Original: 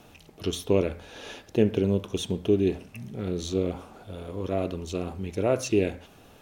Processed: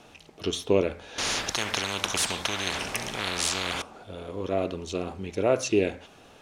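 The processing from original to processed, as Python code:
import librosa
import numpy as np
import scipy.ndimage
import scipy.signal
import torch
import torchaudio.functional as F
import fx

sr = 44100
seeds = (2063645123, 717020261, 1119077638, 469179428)

y = scipy.signal.sosfilt(scipy.signal.butter(2, 8600.0, 'lowpass', fs=sr, output='sos'), x)
y = fx.low_shelf(y, sr, hz=250.0, db=-8.5)
y = fx.spectral_comp(y, sr, ratio=10.0, at=(1.18, 3.82))
y = y * 10.0 ** (3.0 / 20.0)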